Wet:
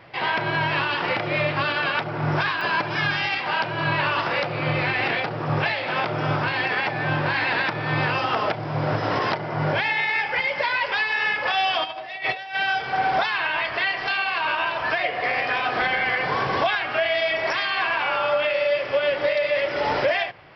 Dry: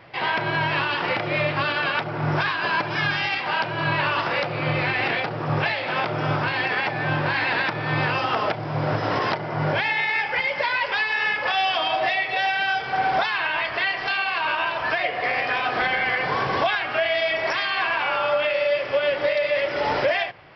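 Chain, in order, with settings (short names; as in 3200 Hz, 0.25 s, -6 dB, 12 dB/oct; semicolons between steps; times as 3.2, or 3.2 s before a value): 11.84–12.55 negative-ratio compressor -29 dBFS, ratio -0.5; pops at 2.61, -22 dBFS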